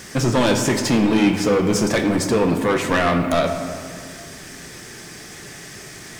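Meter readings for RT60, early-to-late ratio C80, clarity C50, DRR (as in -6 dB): 2.0 s, 8.0 dB, 7.0 dB, 5.0 dB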